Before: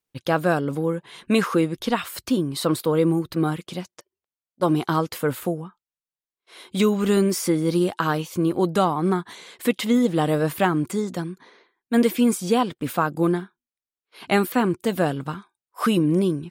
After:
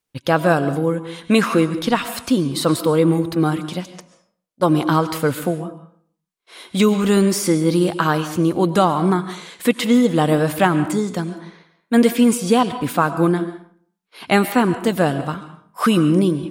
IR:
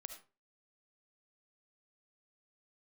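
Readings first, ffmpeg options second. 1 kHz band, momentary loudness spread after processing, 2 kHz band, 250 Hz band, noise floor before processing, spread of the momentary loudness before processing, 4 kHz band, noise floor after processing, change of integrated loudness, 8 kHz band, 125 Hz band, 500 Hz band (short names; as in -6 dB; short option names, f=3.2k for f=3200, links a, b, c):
+5.0 dB, 10 LU, +5.0 dB, +4.5 dB, under -85 dBFS, 9 LU, +5.0 dB, -75 dBFS, +4.5 dB, +5.0 dB, +5.0 dB, +4.0 dB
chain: -filter_complex "[0:a]asplit=2[a][b];[b]equalizer=f=380:t=o:w=0.25:g=-8.5[c];[1:a]atrim=start_sample=2205,asetrate=22932,aresample=44100[d];[c][d]afir=irnorm=-1:irlink=0,volume=0dB[e];[a][e]amix=inputs=2:normalize=0"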